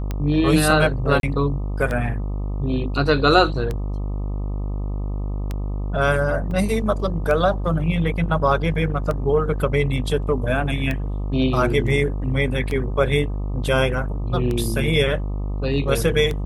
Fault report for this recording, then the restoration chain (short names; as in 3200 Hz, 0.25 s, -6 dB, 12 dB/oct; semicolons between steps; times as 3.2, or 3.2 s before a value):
buzz 50 Hz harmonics 25 -25 dBFS
tick 33 1/3 rpm -13 dBFS
1.2–1.23 gap 32 ms
6.51 gap 2.4 ms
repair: de-click; de-hum 50 Hz, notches 25; interpolate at 1.2, 32 ms; interpolate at 6.51, 2.4 ms